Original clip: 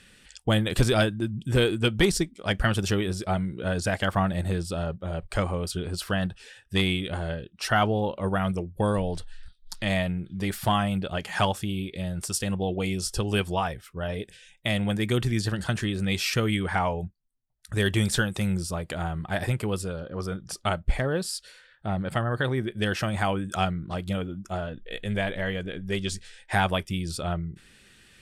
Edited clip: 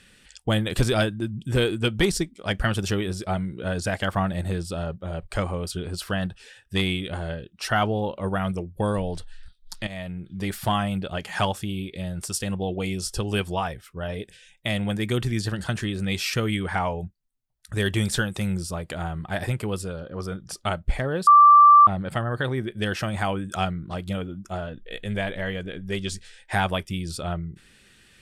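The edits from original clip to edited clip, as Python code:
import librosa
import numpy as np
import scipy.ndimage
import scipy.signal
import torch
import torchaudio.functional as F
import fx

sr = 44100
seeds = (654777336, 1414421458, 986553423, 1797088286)

y = fx.edit(x, sr, fx.fade_in_from(start_s=9.87, length_s=0.52, floor_db=-15.0),
    fx.bleep(start_s=21.27, length_s=0.6, hz=1170.0, db=-8.5), tone=tone)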